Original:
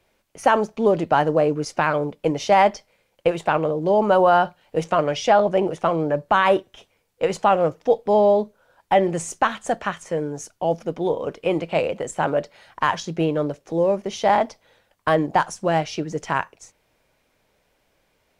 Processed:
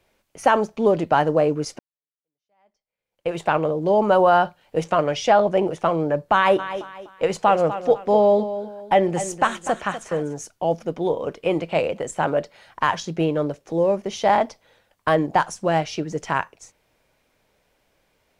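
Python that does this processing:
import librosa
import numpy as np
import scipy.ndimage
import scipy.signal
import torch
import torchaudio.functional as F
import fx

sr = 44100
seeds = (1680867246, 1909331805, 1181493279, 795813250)

y = fx.echo_feedback(x, sr, ms=247, feedback_pct=33, wet_db=-12, at=(6.58, 10.33), fade=0.02)
y = fx.edit(y, sr, fx.fade_in_span(start_s=1.79, length_s=1.58, curve='exp'), tone=tone)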